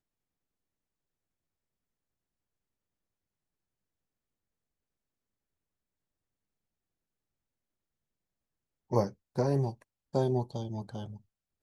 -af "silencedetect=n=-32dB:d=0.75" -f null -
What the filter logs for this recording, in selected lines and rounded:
silence_start: 0.00
silence_end: 8.92 | silence_duration: 8.92